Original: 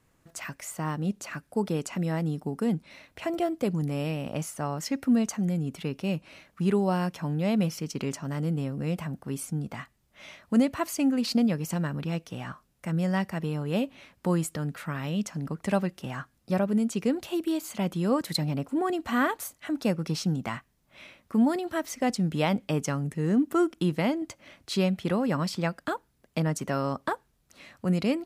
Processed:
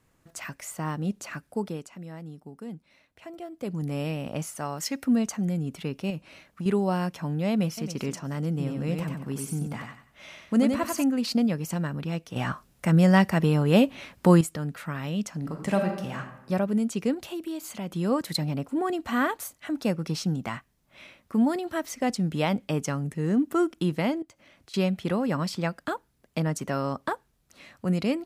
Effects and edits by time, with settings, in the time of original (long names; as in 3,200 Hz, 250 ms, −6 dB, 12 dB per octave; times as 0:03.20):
0:01.46–0:03.94: duck −12 dB, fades 0.44 s
0:04.55–0:05.04: spectral tilt +1.5 dB per octave
0:06.10–0:06.66: downward compressor, threshold −29 dBFS
0:07.50–0:07.95: delay throw 270 ms, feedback 30%, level −12 dB
0:08.50–0:11.04: repeating echo 93 ms, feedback 31%, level −4 dB
0:12.36–0:14.41: clip gain +8.5 dB
0:15.37–0:16.19: thrown reverb, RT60 0.86 s, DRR 3 dB
0:17.14–0:17.93: downward compressor 2 to 1, threshold −34 dBFS
0:24.22–0:24.74: downward compressor 2.5 to 1, threshold −55 dBFS